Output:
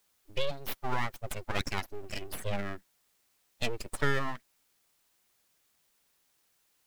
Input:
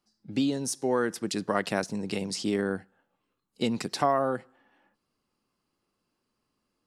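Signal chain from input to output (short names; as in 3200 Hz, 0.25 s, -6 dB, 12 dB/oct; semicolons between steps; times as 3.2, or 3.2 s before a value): per-bin expansion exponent 2; bell 2400 Hz +8.5 dB 0.87 oct; full-wave rectifier; requantised 12-bit, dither triangular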